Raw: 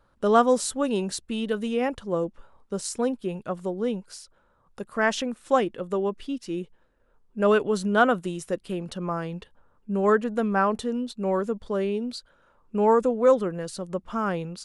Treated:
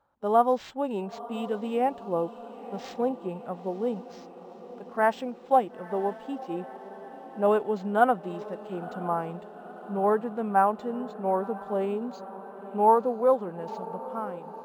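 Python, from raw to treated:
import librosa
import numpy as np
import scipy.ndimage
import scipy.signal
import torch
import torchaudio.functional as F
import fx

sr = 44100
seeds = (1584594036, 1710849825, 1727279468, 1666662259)

p1 = fx.fade_out_tail(x, sr, length_s=0.79)
p2 = fx.highpass(p1, sr, hz=140.0, slope=6)
p3 = fx.peak_eq(p2, sr, hz=810.0, db=12.0, octaves=0.62)
p4 = fx.hpss(p3, sr, part='percussive', gain_db=4)
p5 = fx.high_shelf(p4, sr, hz=6300.0, db=-7.0)
p6 = fx.hpss(p5, sr, part='percussive', gain_db=-12)
p7 = fx.rider(p6, sr, range_db=3, speed_s=2.0)
p8 = p7 + fx.echo_diffused(p7, sr, ms=964, feedback_pct=63, wet_db=-15.5, dry=0)
p9 = np.interp(np.arange(len(p8)), np.arange(len(p8))[::4], p8[::4])
y = p9 * 10.0 ** (-5.5 / 20.0)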